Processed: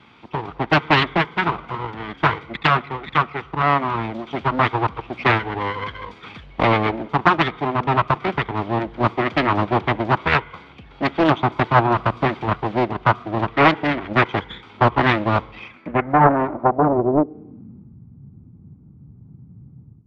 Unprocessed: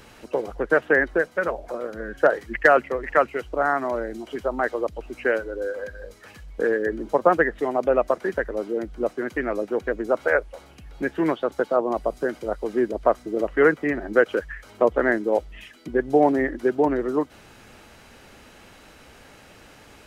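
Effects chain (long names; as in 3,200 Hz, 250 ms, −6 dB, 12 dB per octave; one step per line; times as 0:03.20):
lower of the sound and its delayed copy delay 0.86 ms
low-pass filter sweep 3,300 Hz → 140 Hz, 0:15.51–0:17.98
automatic gain control gain up to 11 dB
high-pass filter 110 Hz 12 dB per octave
high-shelf EQ 2,200 Hz −10 dB
on a send at −21 dB: convolution reverb, pre-delay 35 ms
on the sum: highs frequency-modulated by the lows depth 0.64 ms
level +1.5 dB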